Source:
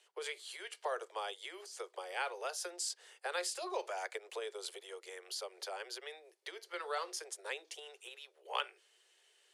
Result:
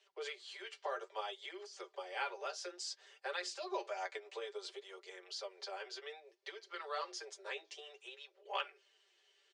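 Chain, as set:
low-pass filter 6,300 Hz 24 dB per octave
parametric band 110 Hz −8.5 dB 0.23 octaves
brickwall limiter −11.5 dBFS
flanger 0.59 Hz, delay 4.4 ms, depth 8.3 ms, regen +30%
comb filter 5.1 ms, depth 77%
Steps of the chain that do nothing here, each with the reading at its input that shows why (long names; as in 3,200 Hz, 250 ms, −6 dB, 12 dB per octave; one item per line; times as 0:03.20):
parametric band 110 Hz: nothing at its input below 300 Hz
brickwall limiter −11.5 dBFS: peak of its input −19.5 dBFS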